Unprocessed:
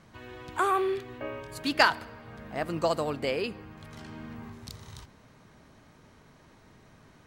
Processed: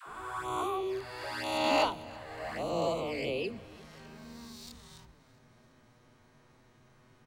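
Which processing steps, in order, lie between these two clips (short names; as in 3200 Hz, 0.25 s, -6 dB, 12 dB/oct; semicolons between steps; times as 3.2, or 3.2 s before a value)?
spectral swells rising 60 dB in 1.85 s; low shelf 74 Hz +2.5 dB; notches 50/100/150/200/250 Hz; envelope flanger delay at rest 9.5 ms, full sweep at -22.5 dBFS; dispersion lows, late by 76 ms, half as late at 510 Hz; on a send: feedback echo 0.334 s, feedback 58%, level -22 dB; on the sum: gain -6 dB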